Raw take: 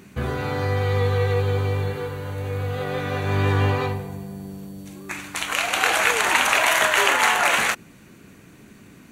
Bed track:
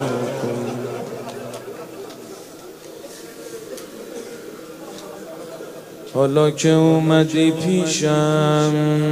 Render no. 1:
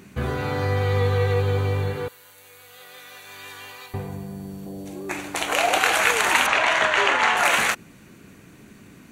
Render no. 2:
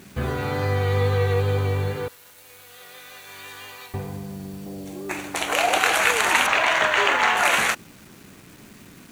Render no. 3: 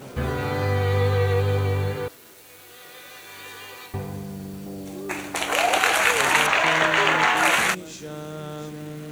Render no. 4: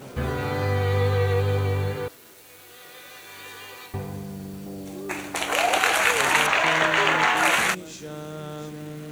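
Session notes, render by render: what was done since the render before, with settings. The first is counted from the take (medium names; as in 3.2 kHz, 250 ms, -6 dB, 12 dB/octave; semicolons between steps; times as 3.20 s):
2.08–3.94 s: differentiator; 4.66–5.78 s: high-order bell 510 Hz +9 dB; 6.46–7.37 s: distance through air 110 m
wow and flutter 19 cents; bit crusher 8-bit
add bed track -18.5 dB
trim -1 dB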